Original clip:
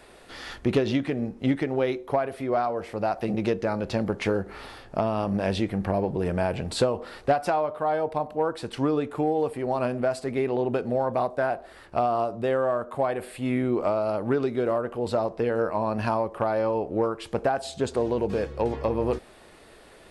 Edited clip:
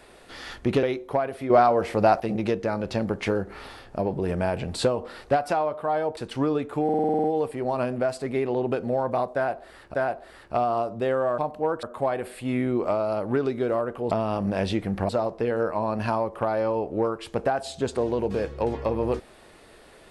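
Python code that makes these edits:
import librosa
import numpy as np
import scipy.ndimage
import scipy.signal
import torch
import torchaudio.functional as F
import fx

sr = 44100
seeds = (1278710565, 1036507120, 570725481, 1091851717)

y = fx.edit(x, sr, fx.cut(start_s=0.83, length_s=0.99),
    fx.clip_gain(start_s=2.49, length_s=0.7, db=7.5),
    fx.move(start_s=4.98, length_s=0.98, to_s=15.08),
    fx.move(start_s=8.14, length_s=0.45, to_s=12.8),
    fx.stutter(start_s=9.26, slice_s=0.05, count=9),
    fx.repeat(start_s=11.36, length_s=0.6, count=2), tone=tone)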